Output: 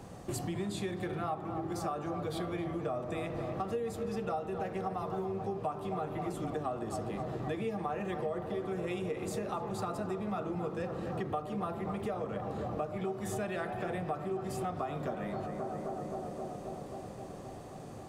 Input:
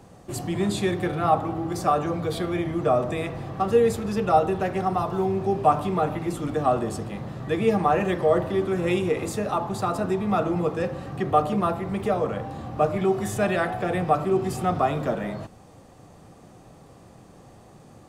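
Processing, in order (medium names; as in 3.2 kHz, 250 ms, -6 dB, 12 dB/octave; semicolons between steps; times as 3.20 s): tape echo 264 ms, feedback 86%, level -9.5 dB, low-pass 1.5 kHz; compression 6:1, threshold -35 dBFS, peak gain reduction 20.5 dB; trim +1 dB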